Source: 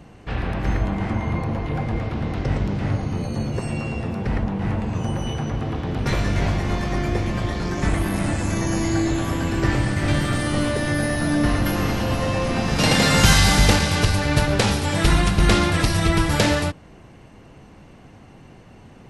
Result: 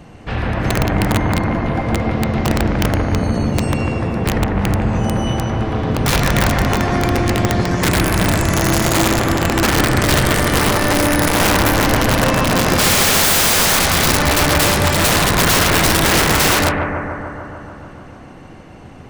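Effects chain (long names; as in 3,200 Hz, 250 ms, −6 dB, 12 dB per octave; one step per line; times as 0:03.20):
mains-hum notches 50/100/150/200/250/300/350/400/450 Hz
wrap-around overflow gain 15.5 dB
on a send: bucket-brigade delay 147 ms, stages 2,048, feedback 74%, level −4 dB
on the sum: level +6 dB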